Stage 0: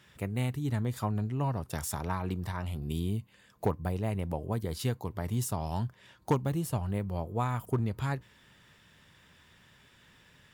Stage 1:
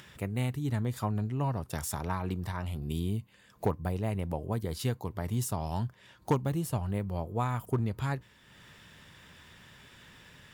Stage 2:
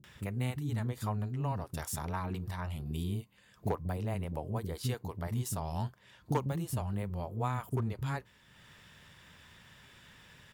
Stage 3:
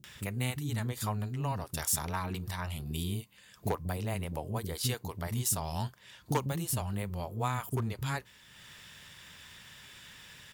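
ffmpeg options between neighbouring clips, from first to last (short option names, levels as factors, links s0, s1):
-af "acompressor=mode=upward:threshold=0.00501:ratio=2.5"
-filter_complex "[0:a]acrossover=split=320[s0][s1];[s1]adelay=40[s2];[s0][s2]amix=inputs=2:normalize=0,volume=0.75"
-af "highshelf=f=2000:g=10.5"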